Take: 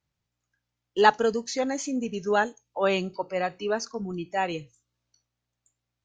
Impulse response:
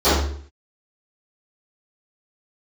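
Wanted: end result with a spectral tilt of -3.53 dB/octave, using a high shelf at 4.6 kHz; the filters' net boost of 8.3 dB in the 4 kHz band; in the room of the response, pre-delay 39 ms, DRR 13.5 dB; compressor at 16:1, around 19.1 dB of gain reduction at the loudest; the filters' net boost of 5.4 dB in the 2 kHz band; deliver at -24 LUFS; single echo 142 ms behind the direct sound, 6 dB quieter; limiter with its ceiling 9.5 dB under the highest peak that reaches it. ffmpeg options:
-filter_complex "[0:a]equalizer=f=2000:t=o:g=4.5,equalizer=f=4000:t=o:g=5.5,highshelf=f=4600:g=8,acompressor=threshold=0.0355:ratio=16,alimiter=level_in=1.5:limit=0.0631:level=0:latency=1,volume=0.668,aecho=1:1:142:0.501,asplit=2[s0][s1];[1:a]atrim=start_sample=2205,adelay=39[s2];[s1][s2]afir=irnorm=-1:irlink=0,volume=0.0126[s3];[s0][s3]amix=inputs=2:normalize=0,volume=4.22"

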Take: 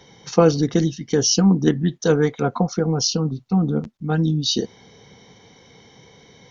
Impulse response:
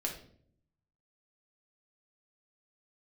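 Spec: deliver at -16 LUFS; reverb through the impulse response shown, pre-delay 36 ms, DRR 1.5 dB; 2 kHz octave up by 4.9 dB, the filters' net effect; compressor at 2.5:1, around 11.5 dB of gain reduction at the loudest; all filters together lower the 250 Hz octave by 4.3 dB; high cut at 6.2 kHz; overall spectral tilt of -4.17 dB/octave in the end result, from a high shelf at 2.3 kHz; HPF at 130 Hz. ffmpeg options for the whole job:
-filter_complex "[0:a]highpass=130,lowpass=6200,equalizer=f=250:t=o:g=-6,equalizer=f=2000:t=o:g=4,highshelf=f=2300:g=6,acompressor=threshold=0.0398:ratio=2.5,asplit=2[s0][s1];[1:a]atrim=start_sample=2205,adelay=36[s2];[s1][s2]afir=irnorm=-1:irlink=0,volume=0.631[s3];[s0][s3]amix=inputs=2:normalize=0,volume=3.16"

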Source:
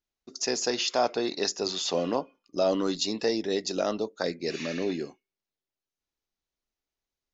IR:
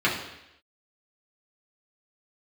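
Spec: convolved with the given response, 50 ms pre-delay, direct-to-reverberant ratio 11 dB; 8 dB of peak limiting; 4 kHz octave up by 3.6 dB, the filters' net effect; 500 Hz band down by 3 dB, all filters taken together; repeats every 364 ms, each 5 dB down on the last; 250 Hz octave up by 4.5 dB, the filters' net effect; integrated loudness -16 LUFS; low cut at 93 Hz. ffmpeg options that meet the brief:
-filter_complex "[0:a]highpass=93,equalizer=f=250:t=o:g=8,equalizer=f=500:t=o:g=-6.5,equalizer=f=4000:t=o:g=4.5,alimiter=limit=0.126:level=0:latency=1,aecho=1:1:364|728|1092|1456|1820|2184|2548:0.562|0.315|0.176|0.0988|0.0553|0.031|0.0173,asplit=2[s0][s1];[1:a]atrim=start_sample=2205,adelay=50[s2];[s1][s2]afir=irnorm=-1:irlink=0,volume=0.0473[s3];[s0][s3]amix=inputs=2:normalize=0,volume=3.98"

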